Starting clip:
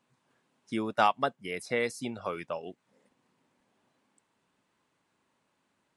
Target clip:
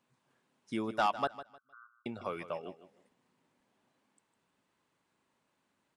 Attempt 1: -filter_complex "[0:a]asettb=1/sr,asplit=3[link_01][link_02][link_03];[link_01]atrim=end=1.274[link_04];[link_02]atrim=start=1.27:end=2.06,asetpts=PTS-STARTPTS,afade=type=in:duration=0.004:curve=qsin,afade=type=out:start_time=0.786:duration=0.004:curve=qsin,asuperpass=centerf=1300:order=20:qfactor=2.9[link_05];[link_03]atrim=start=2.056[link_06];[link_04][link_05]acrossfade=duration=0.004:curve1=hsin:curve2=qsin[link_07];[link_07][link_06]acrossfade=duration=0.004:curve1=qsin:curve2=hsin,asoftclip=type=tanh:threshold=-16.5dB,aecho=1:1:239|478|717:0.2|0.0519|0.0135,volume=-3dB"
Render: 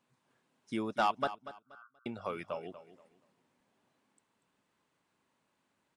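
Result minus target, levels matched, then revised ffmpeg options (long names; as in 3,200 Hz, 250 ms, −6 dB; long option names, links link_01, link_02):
echo 85 ms late
-filter_complex "[0:a]asettb=1/sr,asplit=3[link_01][link_02][link_03];[link_01]atrim=end=1.274[link_04];[link_02]atrim=start=1.27:end=2.06,asetpts=PTS-STARTPTS,afade=type=in:duration=0.004:curve=qsin,afade=type=out:start_time=0.786:duration=0.004:curve=qsin,asuperpass=centerf=1300:order=20:qfactor=2.9[link_05];[link_03]atrim=start=2.056[link_06];[link_04][link_05]acrossfade=duration=0.004:curve1=hsin:curve2=qsin[link_07];[link_07][link_06]acrossfade=duration=0.004:curve1=qsin:curve2=hsin,asoftclip=type=tanh:threshold=-16.5dB,aecho=1:1:154|308|462:0.2|0.0519|0.0135,volume=-3dB"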